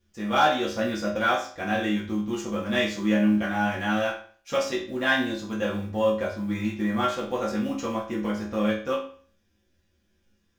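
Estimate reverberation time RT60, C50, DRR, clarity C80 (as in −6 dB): 0.45 s, 6.5 dB, −6.5 dB, 11.0 dB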